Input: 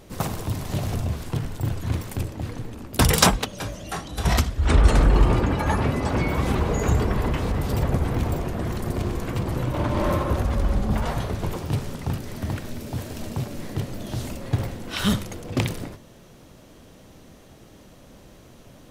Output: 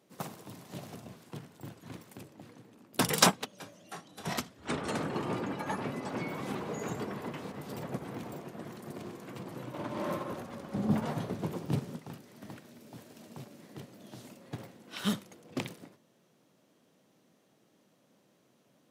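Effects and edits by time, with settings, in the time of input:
10.74–11.99 low shelf 440 Hz +9.5 dB
whole clip: HPF 150 Hz 24 dB/oct; upward expander 1.5:1, over -38 dBFS; gain -5 dB

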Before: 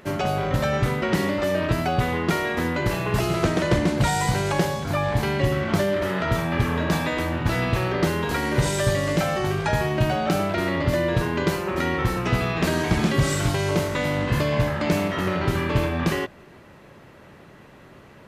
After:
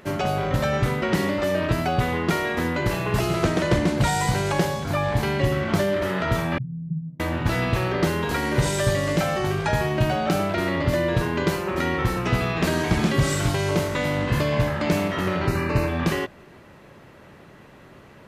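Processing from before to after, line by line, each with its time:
6.58–7.2 Butterworth band-pass 150 Hz, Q 3.8
15.47–15.88 Butterworth band-stop 3300 Hz, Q 3.8

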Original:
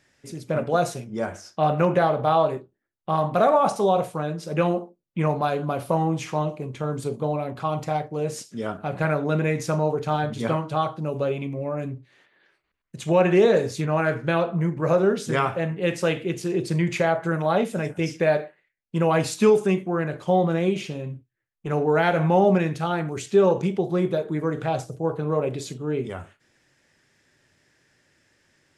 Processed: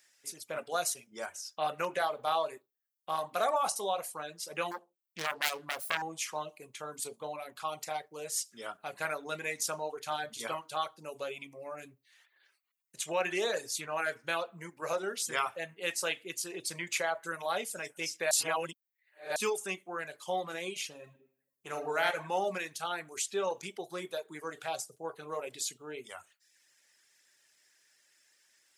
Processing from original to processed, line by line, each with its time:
4.71–6.02 self-modulated delay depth 0.73 ms
18.31–19.36 reverse
20.98–22.07 reverb throw, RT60 0.86 s, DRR 4.5 dB
whole clip: RIAA curve recording; reverb removal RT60 0.6 s; low shelf 410 Hz -11.5 dB; gain -6.5 dB

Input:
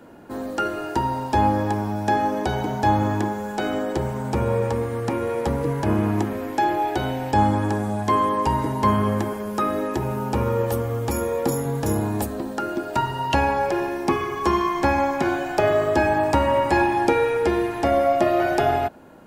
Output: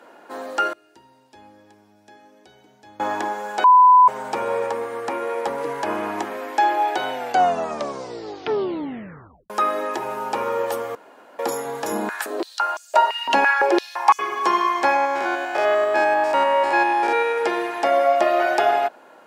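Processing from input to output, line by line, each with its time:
0.73–3 passive tone stack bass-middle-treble 10-0-1
3.64–4.08 bleep 1000 Hz -11.5 dBFS
4.66–5.58 bell 4600 Hz -3 dB 2.3 oct
7.11 tape stop 2.39 s
10.95–11.39 room tone
11.92–14.19 stepped high-pass 5.9 Hz 210–6700 Hz
14.96–17.38 stepped spectrum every 0.1 s
whole clip: HPF 600 Hz 12 dB/oct; high shelf 10000 Hz -11.5 dB; gain +4.5 dB

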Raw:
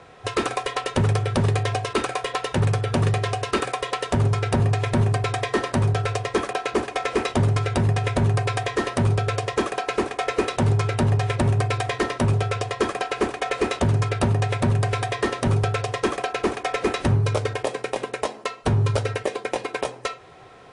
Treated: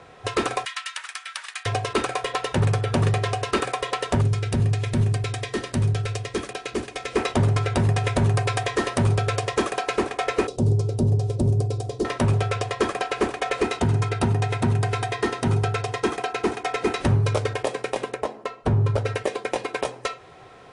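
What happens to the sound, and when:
0.65–1.66 HPF 1400 Hz 24 dB/oct
4.21–7.16 bell 900 Hz -10.5 dB 2.2 oct
7.77–9.96 high shelf 5000 Hz +4 dB
10.47–12.05 EQ curve 430 Hz 0 dB, 1900 Hz -28 dB, 4900 Hz -5 dB
13.63–17.01 notch comb 570 Hz
18.14–19.06 high shelf 2100 Hz -11.5 dB

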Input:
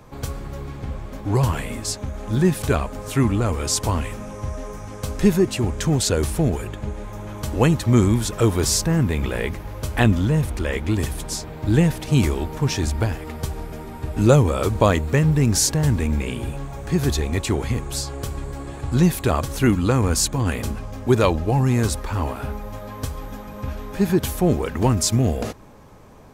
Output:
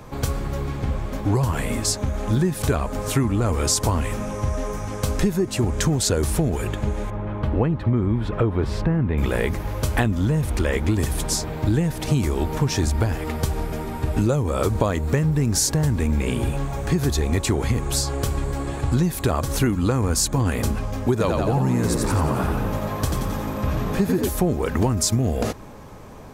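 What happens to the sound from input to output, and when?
7.1–9.18 air absorption 490 m
21.11–24.29 frequency-shifting echo 88 ms, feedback 56%, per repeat +55 Hz, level -5 dB
whole clip: dynamic EQ 2800 Hz, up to -4 dB, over -39 dBFS, Q 1.4; compressor 12:1, threshold -22 dBFS; gain +5.5 dB

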